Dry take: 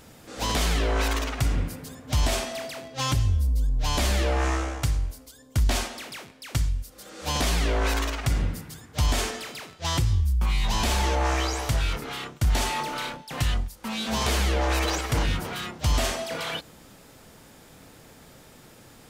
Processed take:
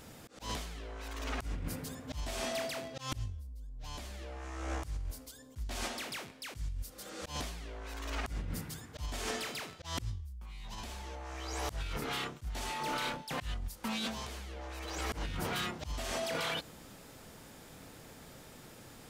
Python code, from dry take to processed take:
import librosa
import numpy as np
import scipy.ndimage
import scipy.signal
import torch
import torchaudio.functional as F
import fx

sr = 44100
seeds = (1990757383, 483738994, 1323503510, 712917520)

y = fx.auto_swell(x, sr, attack_ms=311.0)
y = fx.over_compress(y, sr, threshold_db=-32.0, ratio=-1.0)
y = y * 10.0 ** (-7.0 / 20.0)